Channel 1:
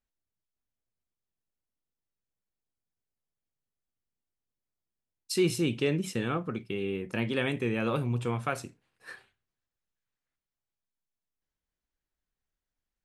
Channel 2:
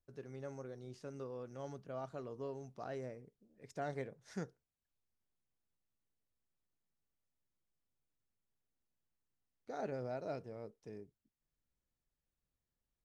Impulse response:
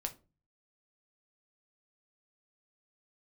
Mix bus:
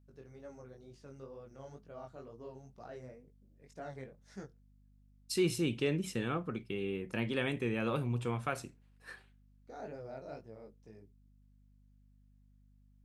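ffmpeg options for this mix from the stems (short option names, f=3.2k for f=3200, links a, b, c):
-filter_complex "[0:a]volume=-4.5dB[a];[1:a]flanger=delay=17.5:depth=5.6:speed=2.1,volume=-1dB[b];[a][b]amix=inputs=2:normalize=0,aeval=exprs='val(0)+0.000708*(sin(2*PI*50*n/s)+sin(2*PI*2*50*n/s)/2+sin(2*PI*3*50*n/s)/3+sin(2*PI*4*50*n/s)/4+sin(2*PI*5*50*n/s)/5)':c=same"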